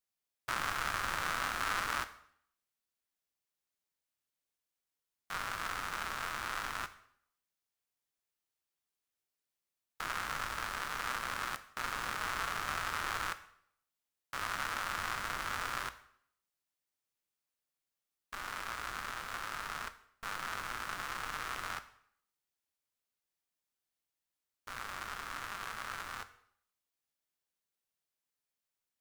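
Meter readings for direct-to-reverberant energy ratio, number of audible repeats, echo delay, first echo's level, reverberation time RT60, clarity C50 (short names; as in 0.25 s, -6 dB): 11.0 dB, none, none, none, 0.65 s, 15.0 dB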